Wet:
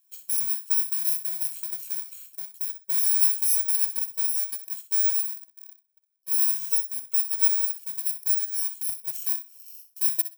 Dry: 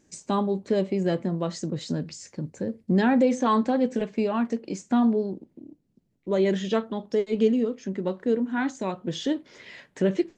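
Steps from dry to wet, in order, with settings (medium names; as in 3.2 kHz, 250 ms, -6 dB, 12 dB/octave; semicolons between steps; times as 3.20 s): bit-reversed sample order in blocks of 64 samples; differentiator; thinning echo 63 ms, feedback 16%, high-pass 220 Hz, level -11.5 dB; trim -3.5 dB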